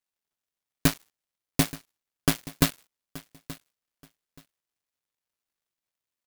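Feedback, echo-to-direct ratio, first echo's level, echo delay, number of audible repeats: 21%, −18.0 dB, −18.0 dB, 877 ms, 2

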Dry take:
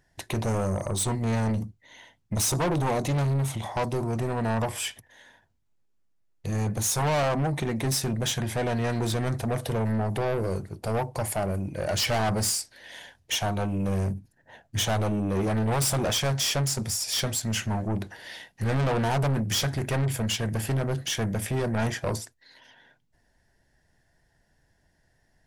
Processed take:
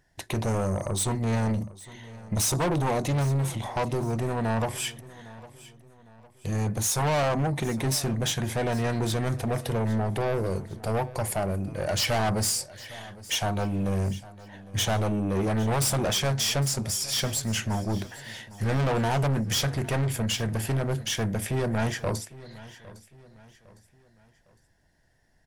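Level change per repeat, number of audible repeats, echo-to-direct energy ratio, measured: −7.5 dB, 3, −18.0 dB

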